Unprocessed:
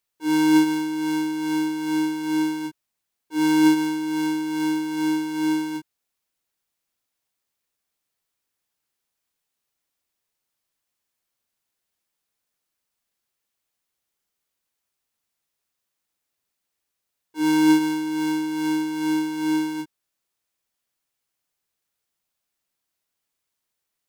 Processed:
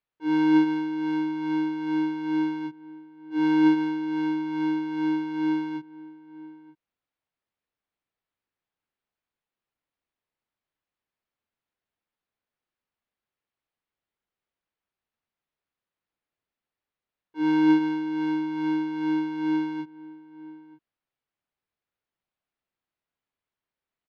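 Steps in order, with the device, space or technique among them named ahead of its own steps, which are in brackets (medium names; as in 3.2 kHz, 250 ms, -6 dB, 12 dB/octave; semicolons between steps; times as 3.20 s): shout across a valley (distance through air 310 m; echo from a far wall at 160 m, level -18 dB); trim -2 dB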